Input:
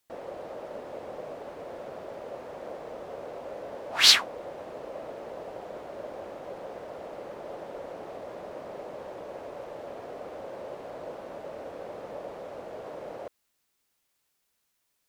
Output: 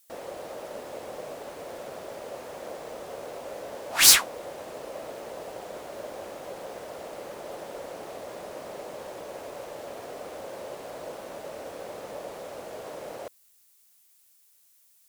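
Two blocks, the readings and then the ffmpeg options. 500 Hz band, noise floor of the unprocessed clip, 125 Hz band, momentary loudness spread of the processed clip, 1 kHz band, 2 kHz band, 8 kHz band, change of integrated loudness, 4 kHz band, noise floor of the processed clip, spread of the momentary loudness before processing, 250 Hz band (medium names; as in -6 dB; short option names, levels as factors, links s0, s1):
+0.5 dB, -76 dBFS, +1.0 dB, 1 LU, +1.5 dB, +1.5 dB, +9.5 dB, +2.5 dB, -2.0 dB, -62 dBFS, 1 LU, +0.5 dB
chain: -filter_complex "[0:a]highshelf=f=2300:g=9.5,acrossover=split=6800[s0][s1];[s0]aeval=exprs='0.188*(abs(mod(val(0)/0.188+3,4)-2)-1)':c=same[s2];[s1]acontrast=86[s3];[s2][s3]amix=inputs=2:normalize=0"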